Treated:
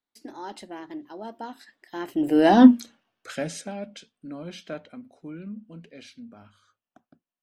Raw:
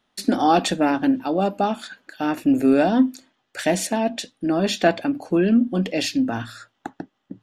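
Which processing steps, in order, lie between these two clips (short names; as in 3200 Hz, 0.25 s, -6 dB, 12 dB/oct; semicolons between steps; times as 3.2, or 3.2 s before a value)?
Doppler pass-by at 2.64, 42 m/s, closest 4.9 m; wow and flutter 18 cents; gain +6 dB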